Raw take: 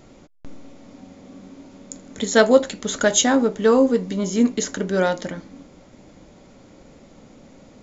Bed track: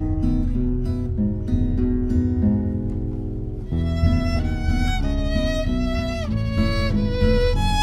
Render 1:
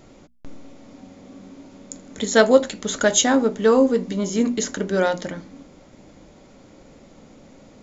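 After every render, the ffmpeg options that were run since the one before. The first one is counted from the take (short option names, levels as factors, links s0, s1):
-af "bandreject=f=60:t=h:w=6,bandreject=f=120:t=h:w=6,bandreject=f=180:t=h:w=6,bandreject=f=240:t=h:w=6"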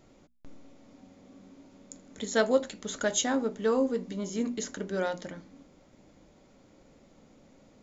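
-af "volume=0.299"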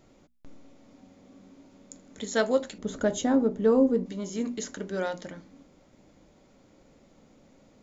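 -filter_complex "[0:a]asettb=1/sr,asplit=3[s0][s1][s2];[s0]atrim=end=2.784[s3];[s1]atrim=start=2.78:end=4.06,asetpts=PTS-STARTPTS,afade=t=in:d=0.004:c=qsin,afade=t=out:st=1.276:d=0.004:c=qsin,tiltshelf=f=920:g=8[s4];[s2]atrim=start=4.056[s5];[s3][s4]acrossfade=d=0.004:c1=hsin:c2=qsin[s6];[s6][s5]acrossfade=d=0.004:c1=qsin:c2=hsin"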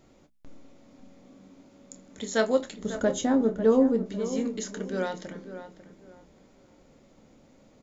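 -filter_complex "[0:a]asplit=2[s0][s1];[s1]adelay=27,volume=0.266[s2];[s0][s2]amix=inputs=2:normalize=0,asplit=2[s3][s4];[s4]adelay=546,lowpass=f=1900:p=1,volume=0.282,asplit=2[s5][s6];[s6]adelay=546,lowpass=f=1900:p=1,volume=0.28,asplit=2[s7][s8];[s8]adelay=546,lowpass=f=1900:p=1,volume=0.28[s9];[s3][s5][s7][s9]amix=inputs=4:normalize=0"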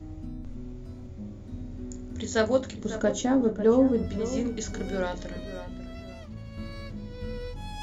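-filter_complex "[1:a]volume=0.126[s0];[0:a][s0]amix=inputs=2:normalize=0"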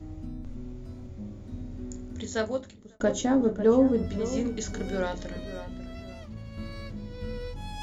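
-filter_complex "[0:a]asplit=2[s0][s1];[s0]atrim=end=3,asetpts=PTS-STARTPTS,afade=t=out:st=1.99:d=1.01[s2];[s1]atrim=start=3,asetpts=PTS-STARTPTS,afade=t=in:d=0.004:c=hsin[s3];[s2][s3]concat=n=2:v=0:a=1"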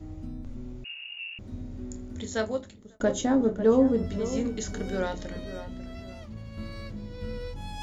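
-filter_complex "[0:a]asettb=1/sr,asplit=3[s0][s1][s2];[s0]atrim=end=0.844[s3];[s1]atrim=start=0.84:end=1.39,asetpts=PTS-STARTPTS,afade=t=in:d=0.004:c=qsin,afade=t=out:st=0.546:d=0.004:c=qsin,lowpass=f=2500:t=q:w=0.5098,lowpass=f=2500:t=q:w=0.6013,lowpass=f=2500:t=q:w=0.9,lowpass=f=2500:t=q:w=2.563,afreqshift=-2900[s4];[s2]atrim=start=1.386[s5];[s3][s4]acrossfade=d=0.004:c1=hsin:c2=qsin[s6];[s6][s5]acrossfade=d=0.004:c1=qsin:c2=hsin"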